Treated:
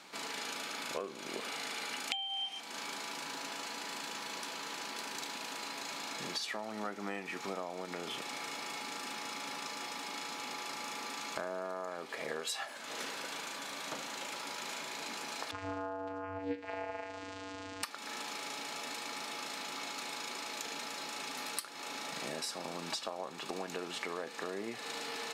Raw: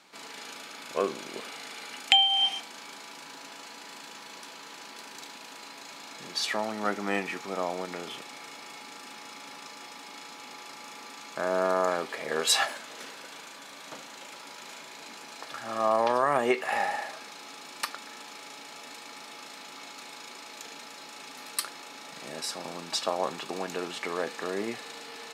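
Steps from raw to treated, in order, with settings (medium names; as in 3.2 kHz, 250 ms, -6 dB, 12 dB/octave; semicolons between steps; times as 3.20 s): compression 12:1, threshold -39 dBFS, peak gain reduction 23 dB; 15.51–17.83 s: vocoder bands 8, square 95.5 Hz; trim +3.5 dB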